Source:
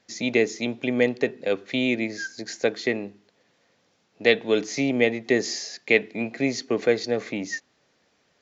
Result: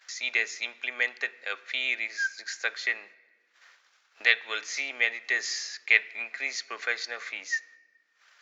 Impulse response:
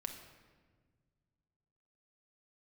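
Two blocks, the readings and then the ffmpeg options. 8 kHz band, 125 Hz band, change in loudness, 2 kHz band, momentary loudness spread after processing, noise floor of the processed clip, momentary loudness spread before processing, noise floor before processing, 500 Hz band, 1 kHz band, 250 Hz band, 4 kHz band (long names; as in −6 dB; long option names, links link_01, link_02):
can't be measured, below −40 dB, −3.5 dB, +2.0 dB, 10 LU, −68 dBFS, 10 LU, −67 dBFS, −20.5 dB, −4.5 dB, −29.5 dB, −1.0 dB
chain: -filter_complex "[0:a]highpass=frequency=1400:width_type=q:width=2.2,acompressor=mode=upward:threshold=-35dB:ratio=2.5,agate=range=-22dB:threshold=-48dB:ratio=16:detection=peak,asplit=2[link_01][link_02];[1:a]atrim=start_sample=2205[link_03];[link_02][link_03]afir=irnorm=-1:irlink=0,volume=-10dB[link_04];[link_01][link_04]amix=inputs=2:normalize=0,volume=-4dB"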